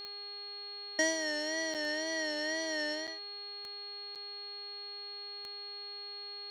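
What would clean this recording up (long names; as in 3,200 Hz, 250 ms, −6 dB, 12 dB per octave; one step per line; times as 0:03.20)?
click removal
hum removal 407.3 Hz, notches 11
notch filter 4,300 Hz, Q 30
repair the gap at 0:01.74/0:03.07/0:04.15, 6.8 ms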